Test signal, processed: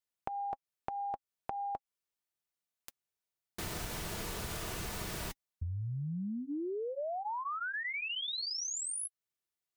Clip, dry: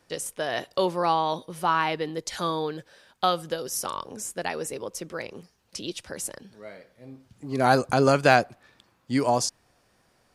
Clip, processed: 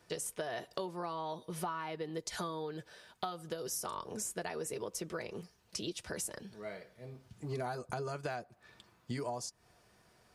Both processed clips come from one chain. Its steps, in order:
notch comb filter 270 Hz
dynamic equaliser 2,900 Hz, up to −4 dB, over −41 dBFS, Q 0.85
downward compressor 16 to 1, threshold −35 dBFS

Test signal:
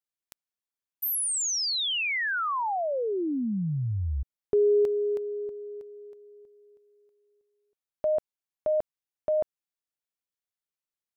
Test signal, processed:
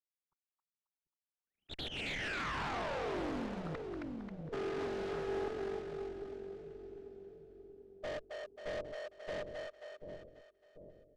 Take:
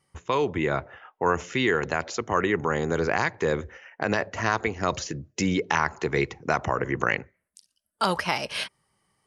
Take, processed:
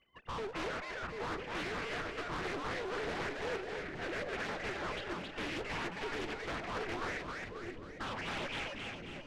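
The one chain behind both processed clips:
three sine waves on the formant tracks
spectral tilt +4.5 dB per octave
tube saturation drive 41 dB, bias 0.5
in parallel at −5 dB: sample-rate reduction 1,100 Hz, jitter 20%
on the sum: high-frequency loss of the air 110 metres
echo with a time of its own for lows and highs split 490 Hz, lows 740 ms, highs 269 ms, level −3 dB
highs frequency-modulated by the lows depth 0.54 ms
level +2 dB

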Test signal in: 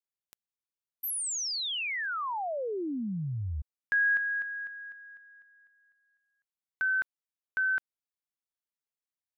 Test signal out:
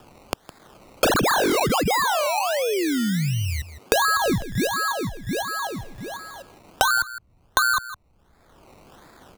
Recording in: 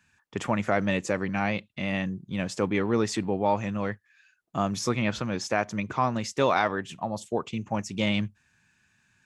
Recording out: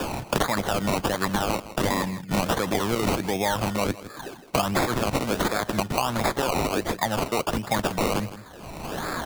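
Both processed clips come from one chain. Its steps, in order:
in parallel at +1 dB: compressor whose output falls as the input rises −28 dBFS
on the sum: tilt shelving filter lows −9 dB, about 1,100 Hz
sample-and-hold swept by an LFO 21×, swing 60% 1.4 Hz
brickwall limiter −14 dBFS
single-tap delay 161 ms −18.5 dB
multiband upward and downward compressor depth 100%

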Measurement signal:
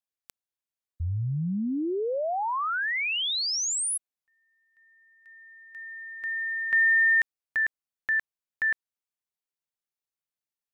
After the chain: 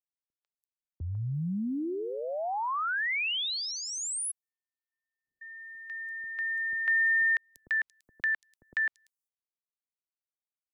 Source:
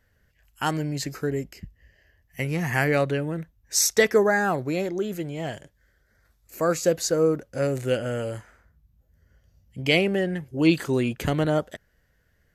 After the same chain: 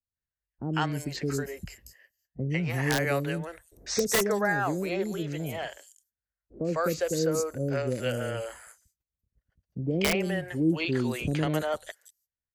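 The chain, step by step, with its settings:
noise gate −54 dBFS, range −41 dB
three-band delay without the direct sound lows, mids, highs 150/340 ms, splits 480/5,800 Hz
wrap-around overflow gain 11 dB
multiband upward and downward compressor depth 40%
level −2.5 dB

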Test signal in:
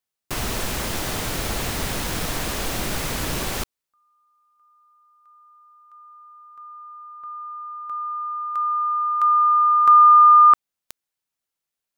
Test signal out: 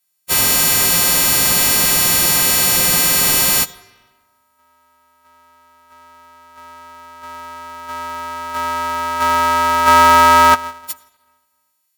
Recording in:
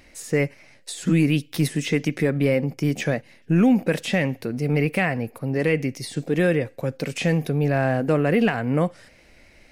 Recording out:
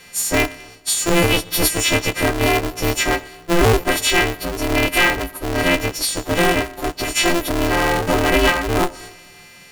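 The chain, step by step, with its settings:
every partial snapped to a pitch grid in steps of 4 semitones
comb and all-pass reverb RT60 1.3 s, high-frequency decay 0.75×, pre-delay 45 ms, DRR 19.5 dB
ring modulator with a square carrier 170 Hz
level +3 dB

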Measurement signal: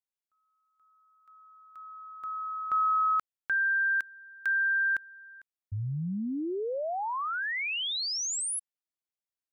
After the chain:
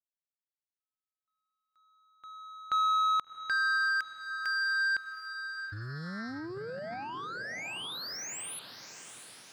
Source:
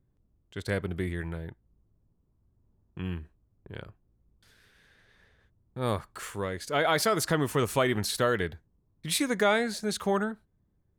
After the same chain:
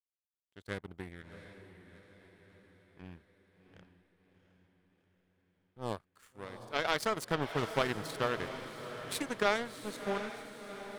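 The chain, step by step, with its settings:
power curve on the samples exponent 2
feedback delay with all-pass diffusion 716 ms, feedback 54%, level −10 dB
highs frequency-modulated by the lows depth 0.16 ms

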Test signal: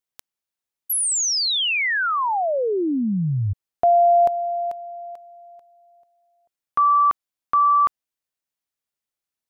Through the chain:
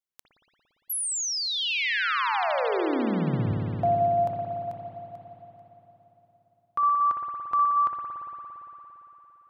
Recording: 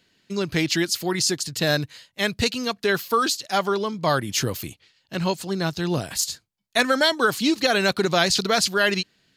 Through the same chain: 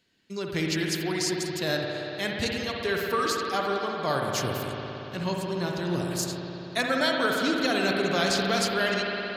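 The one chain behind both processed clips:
spring reverb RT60 3.8 s, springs 57 ms, chirp 30 ms, DRR −1 dB
level −7.5 dB

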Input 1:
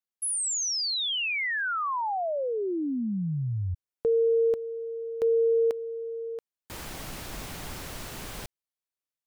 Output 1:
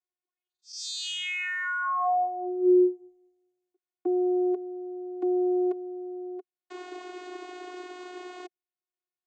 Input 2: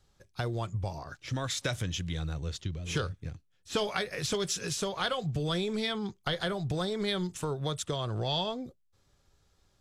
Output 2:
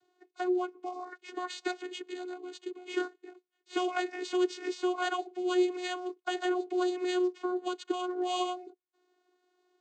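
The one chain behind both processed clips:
bad sample-rate conversion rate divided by 4×, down filtered, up hold
channel vocoder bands 16, saw 362 Hz
level +1.5 dB

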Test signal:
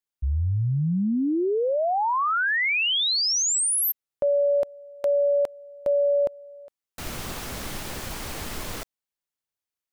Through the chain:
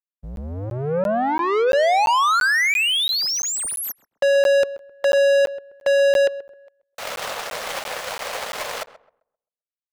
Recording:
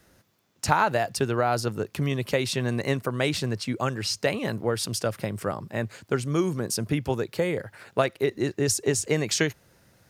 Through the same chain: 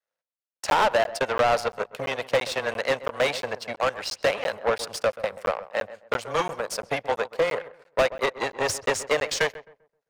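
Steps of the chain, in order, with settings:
frequency shifter −13 Hz
power curve on the samples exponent 2
low shelf with overshoot 420 Hz −6.5 dB, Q 3
mid-hump overdrive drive 36 dB, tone 3,200 Hz, clips at −4.5 dBFS
on a send: feedback echo with a low-pass in the loop 131 ms, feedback 29%, low-pass 1,500 Hz, level −15 dB
on the sum: regular buffer underruns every 0.34 s, samples 512, zero, from 0:00.36
level −6 dB

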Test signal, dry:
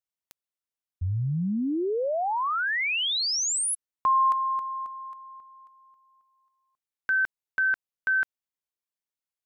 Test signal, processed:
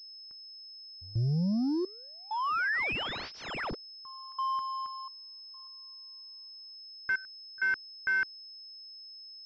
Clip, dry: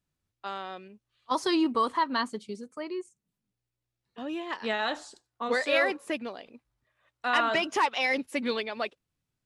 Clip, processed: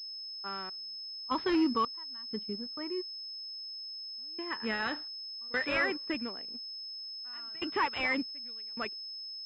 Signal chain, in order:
low-pass that shuts in the quiet parts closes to 1,100 Hz, open at −21.5 dBFS
parametric band 650 Hz −13 dB 1.1 octaves
gate pattern "xxx..xxx..xxxx" 65 BPM −24 dB
leveller curve on the samples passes 1
switching amplifier with a slow clock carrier 5,200 Hz
level −1.5 dB

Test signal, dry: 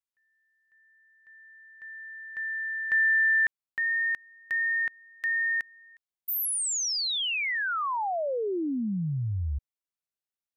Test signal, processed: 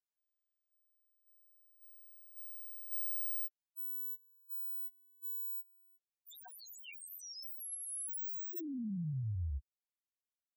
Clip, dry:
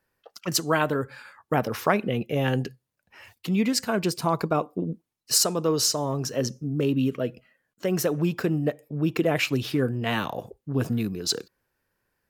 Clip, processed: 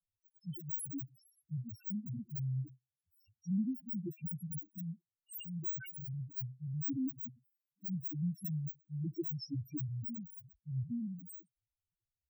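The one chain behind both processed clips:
samples in bit-reversed order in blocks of 64 samples
spectral peaks only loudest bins 1
level −3 dB

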